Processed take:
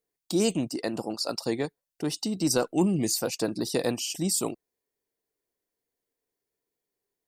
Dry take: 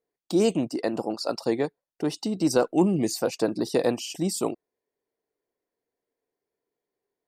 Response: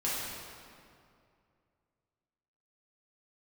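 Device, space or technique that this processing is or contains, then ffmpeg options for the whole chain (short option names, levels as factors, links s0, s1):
smiley-face EQ: -af "lowshelf=f=81:g=5.5,equalizer=f=570:t=o:w=2.6:g=-5,highshelf=f=5200:g=7.5"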